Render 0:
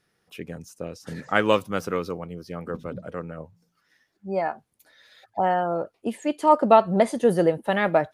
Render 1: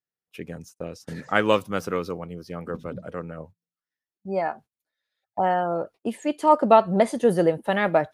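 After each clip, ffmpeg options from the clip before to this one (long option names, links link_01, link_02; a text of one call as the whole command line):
ffmpeg -i in.wav -af "agate=range=-28dB:threshold=-44dB:ratio=16:detection=peak" out.wav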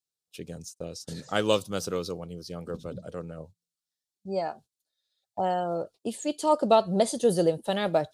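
ffmpeg -i in.wav -af "equalizer=frequency=250:width_type=o:width=1:gain=-4,equalizer=frequency=1000:width_type=o:width=1:gain=-5,equalizer=frequency=2000:width_type=o:width=1:gain=-12,equalizer=frequency=4000:width_type=o:width=1:gain=9,equalizer=frequency=8000:width_type=o:width=1:gain=8,volume=-1dB" out.wav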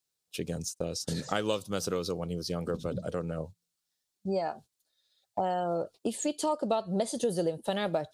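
ffmpeg -i in.wav -af "acompressor=threshold=-35dB:ratio=4,volume=6.5dB" out.wav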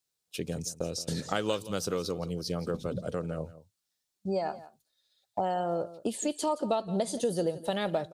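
ffmpeg -i in.wav -af "aecho=1:1:171:0.15" out.wav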